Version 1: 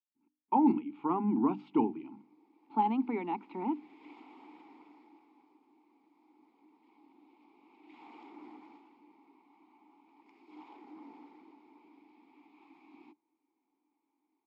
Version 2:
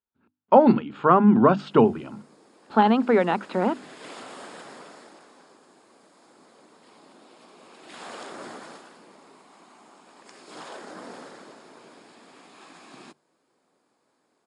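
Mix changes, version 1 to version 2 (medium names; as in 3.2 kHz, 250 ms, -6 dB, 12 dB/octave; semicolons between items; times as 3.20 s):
background: remove three-band isolator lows -12 dB, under 170 Hz, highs -18 dB, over 6.5 kHz; master: remove vowel filter u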